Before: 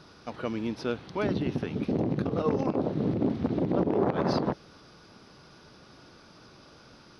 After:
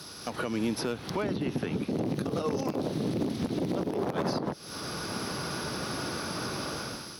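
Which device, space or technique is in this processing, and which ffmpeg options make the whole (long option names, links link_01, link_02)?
FM broadcast chain: -filter_complex "[0:a]highpass=56,dynaudnorm=framelen=180:gausssize=5:maxgain=15dB,acrossover=split=110|2300[link_01][link_02][link_03];[link_01]acompressor=threshold=-52dB:ratio=4[link_04];[link_02]acompressor=threshold=-31dB:ratio=4[link_05];[link_03]acompressor=threshold=-57dB:ratio=4[link_06];[link_04][link_05][link_06]amix=inputs=3:normalize=0,aemphasis=mode=production:type=50fm,alimiter=limit=-24dB:level=0:latency=1:release=258,asoftclip=type=hard:threshold=-26.5dB,lowpass=frequency=15000:width=0.5412,lowpass=frequency=15000:width=1.3066,aemphasis=mode=production:type=50fm,asettb=1/sr,asplit=3[link_07][link_08][link_09];[link_07]atrim=end=1.164[link_10];[link_08]atrim=start=1.16:end=2.15,asetpts=PTS-STARTPTS,afade=type=in:duration=0.004:curve=qsin,afade=type=out:start_time=0.986:duration=0.004:curve=qsin,acrossover=split=3800[link_11][link_12];[link_12]acompressor=threshold=-56dB:ratio=4:attack=1:release=60[link_13];[link_11][link_13]amix=inputs=2:normalize=0[link_14];[link_09]atrim=start=2.146[link_15];[link_10][link_14]acrossfade=duration=0.004:curve1=hsin:curve2=qsin[link_16];[link_16][link_15]acrossfade=duration=0.004:curve1=qsin:curve2=hsin,volume=4.5dB"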